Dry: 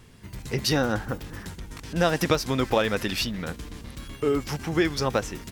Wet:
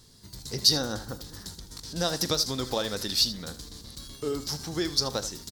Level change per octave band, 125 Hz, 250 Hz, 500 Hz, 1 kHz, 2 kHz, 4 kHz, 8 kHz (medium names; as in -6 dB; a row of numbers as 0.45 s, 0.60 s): -7.0 dB, -7.0 dB, -7.0 dB, -7.5 dB, -10.0 dB, +5.5 dB, +5.0 dB